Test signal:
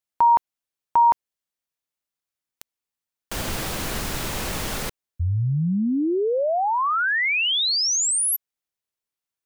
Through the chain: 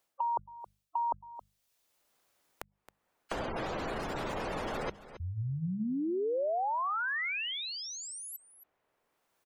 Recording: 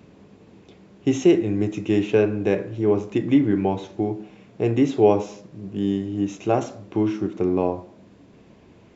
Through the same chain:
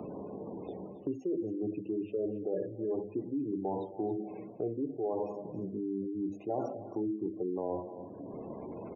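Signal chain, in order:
reversed playback
downward compressor 16 to 1, threshold −29 dBFS
reversed playback
parametric band 610 Hz +9 dB 2.5 octaves
mains-hum notches 50/100/150/200 Hz
gate on every frequency bin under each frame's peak −20 dB strong
on a send: single-tap delay 271 ms −18.5 dB
on the sum: multiband upward and downward compressor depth 70%
level −7.5 dB

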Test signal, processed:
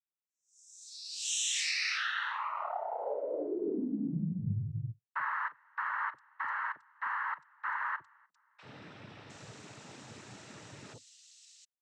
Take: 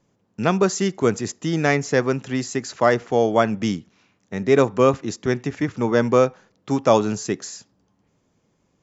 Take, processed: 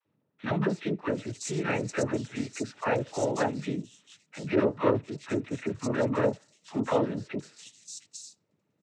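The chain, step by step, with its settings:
three-band delay without the direct sound mids, lows, highs 40/710 ms, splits 850/3,800 Hz
cochlear-implant simulation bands 12
level −8 dB

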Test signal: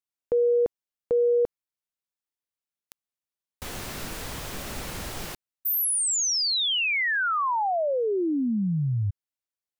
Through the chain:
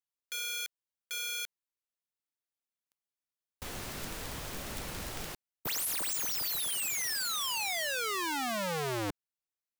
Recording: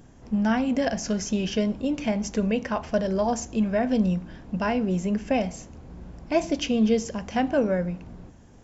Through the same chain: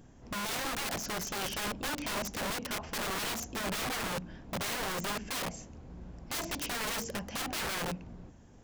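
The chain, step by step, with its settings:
wrap-around overflow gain 25 dB
level −5 dB

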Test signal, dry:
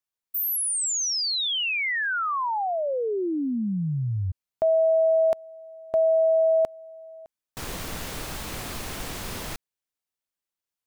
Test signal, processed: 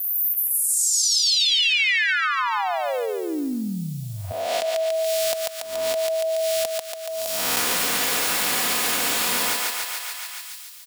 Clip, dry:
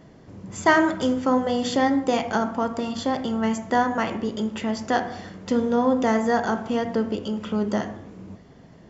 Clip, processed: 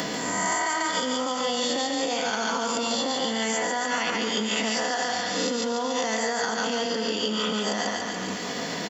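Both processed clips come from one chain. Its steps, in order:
peak hold with a rise ahead of every peak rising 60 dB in 0.64 s
notch filter 6,200 Hz, Q 23
comb filter 4.1 ms, depth 41%
downward compressor, threshold −21 dBFS
feedback echo with a high-pass in the loop 142 ms, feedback 50%, high-pass 530 Hz, level −3 dB
brickwall limiter −18 dBFS
high-pass filter 390 Hz 6 dB per octave
high-shelf EQ 2,400 Hz +11 dB
multiband upward and downward compressor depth 100%

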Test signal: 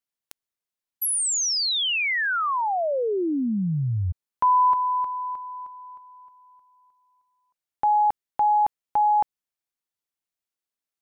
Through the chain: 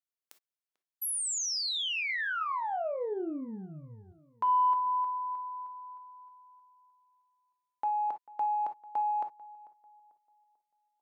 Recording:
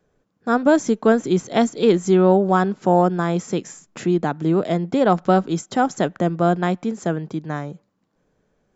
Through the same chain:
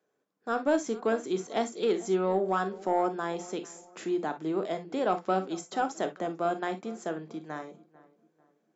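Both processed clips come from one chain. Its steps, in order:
high-pass filter 310 Hz 12 dB per octave
soft clipping −6 dBFS
on a send: feedback echo with a low-pass in the loop 443 ms, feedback 37%, low-pass 1,900 Hz, level −20 dB
on the sum: reverb whose tail is shaped and stops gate 80 ms flat, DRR 8 dB
level −9 dB

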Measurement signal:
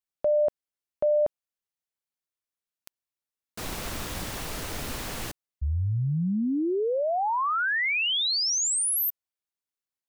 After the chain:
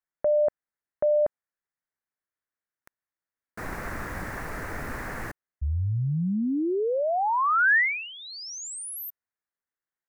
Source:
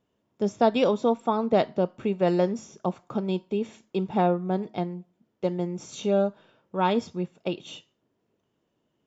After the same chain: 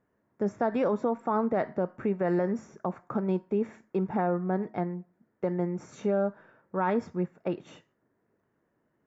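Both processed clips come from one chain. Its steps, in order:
brickwall limiter −18.5 dBFS
high shelf with overshoot 2,400 Hz −10 dB, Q 3

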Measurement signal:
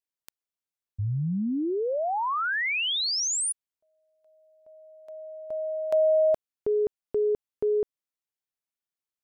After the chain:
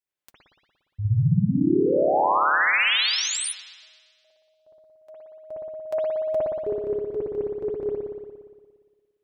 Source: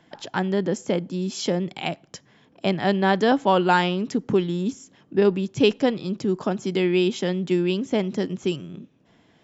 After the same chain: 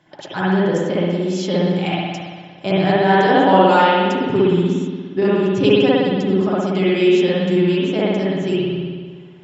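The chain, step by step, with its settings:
notch comb filter 230 Hz
spring reverb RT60 1.6 s, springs 58 ms, chirp 70 ms, DRR −7.5 dB

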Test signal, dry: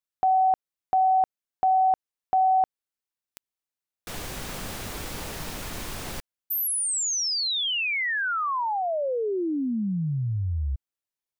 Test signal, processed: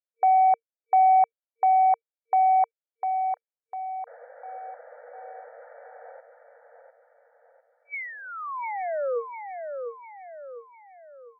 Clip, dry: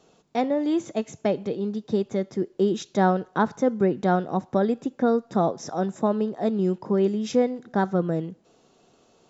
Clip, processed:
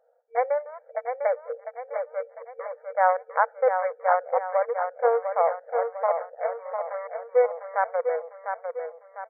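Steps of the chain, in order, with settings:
adaptive Wiener filter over 41 samples
brick-wall band-pass 460–2,300 Hz
repeating echo 701 ms, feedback 45%, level −6.5 dB
level +3.5 dB

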